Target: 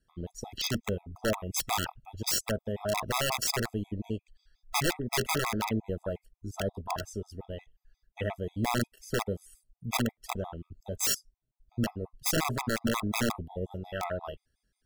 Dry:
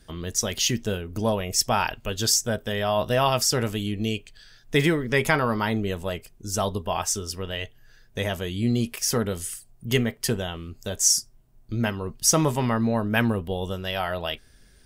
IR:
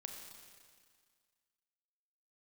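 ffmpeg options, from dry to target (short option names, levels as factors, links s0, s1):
-af "afwtdn=0.0355,aeval=exprs='(mod(5.62*val(0)+1,2)-1)/5.62':c=same,afftfilt=real='re*gt(sin(2*PI*5.6*pts/sr)*(1-2*mod(floor(b*sr/1024/660),2)),0)':imag='im*gt(sin(2*PI*5.6*pts/sr)*(1-2*mod(floor(b*sr/1024/660),2)),0)':win_size=1024:overlap=0.75,volume=0.708"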